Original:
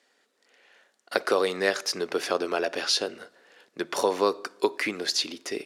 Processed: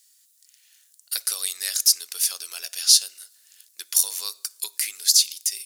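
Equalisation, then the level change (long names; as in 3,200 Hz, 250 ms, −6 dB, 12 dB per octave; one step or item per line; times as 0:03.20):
first-order pre-emphasis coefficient 0.97
RIAA equalisation recording
high-shelf EQ 2,800 Hz +11 dB
−4.0 dB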